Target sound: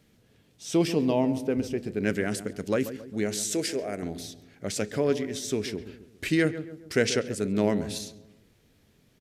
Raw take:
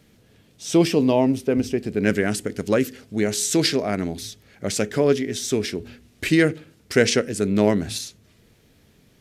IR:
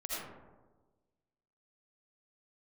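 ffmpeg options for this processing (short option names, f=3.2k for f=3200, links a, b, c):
-filter_complex "[0:a]asettb=1/sr,asplit=3[a][b][c];[a]atrim=end=3.544[d];[b]atrim=start=3.54:end=4.03,asetpts=PTS-STARTPTS,afade=t=in:d=0.004:c=qsin,afade=t=out:st=0.486:d=0.004:c=qsin,equalizer=f=125:t=o:w=1:g=-9,equalizer=f=250:t=o:w=1:g=-5,equalizer=f=500:t=o:w=1:g=4,equalizer=f=1k:t=o:w=1:g=-8,equalizer=f=4k:t=o:w=1:g=-10,equalizer=f=8k:t=o:w=1:g=7[e];[c]atrim=start=4.026[f];[d][e]acrossfade=d=0.004:c1=hsin:c2=qsin[g];[g][f]acrossfade=d=0.004:c1=qsin:c2=hsin,asplit=2[h][i];[i]adelay=136,lowpass=f=1.2k:p=1,volume=-11.5dB,asplit=2[j][k];[k]adelay=136,lowpass=f=1.2k:p=1,volume=0.48,asplit=2[l][m];[m]adelay=136,lowpass=f=1.2k:p=1,volume=0.48,asplit=2[n][o];[o]adelay=136,lowpass=f=1.2k:p=1,volume=0.48,asplit=2[p][q];[q]adelay=136,lowpass=f=1.2k:p=1,volume=0.48[r];[h][j][l][n][p][r]amix=inputs=6:normalize=0,volume=-6.5dB"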